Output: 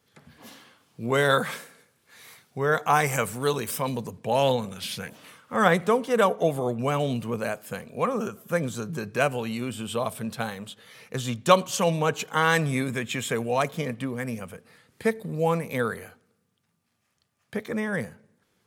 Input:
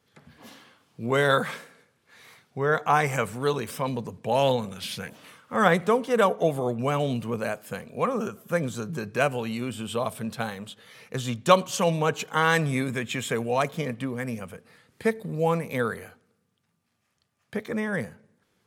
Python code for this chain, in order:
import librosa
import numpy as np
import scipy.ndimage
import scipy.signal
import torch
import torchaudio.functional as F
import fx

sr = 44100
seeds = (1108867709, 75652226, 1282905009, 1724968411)

y = fx.high_shelf(x, sr, hz=6500.0, db=fx.steps((0.0, 5.5), (1.5, 11.5), (4.1, 3.0)))